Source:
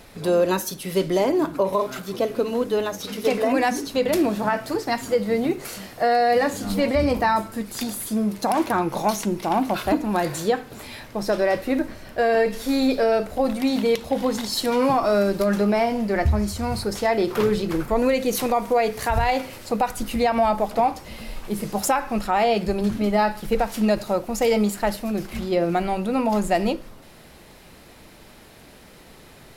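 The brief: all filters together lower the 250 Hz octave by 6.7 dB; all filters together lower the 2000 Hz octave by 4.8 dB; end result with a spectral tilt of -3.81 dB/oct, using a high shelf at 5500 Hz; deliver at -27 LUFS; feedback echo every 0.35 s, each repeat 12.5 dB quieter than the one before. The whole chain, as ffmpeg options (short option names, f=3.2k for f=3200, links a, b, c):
-af "equalizer=f=250:t=o:g=-8.5,equalizer=f=2k:t=o:g=-7,highshelf=f=5.5k:g=8.5,aecho=1:1:350|700|1050:0.237|0.0569|0.0137,volume=-2.5dB"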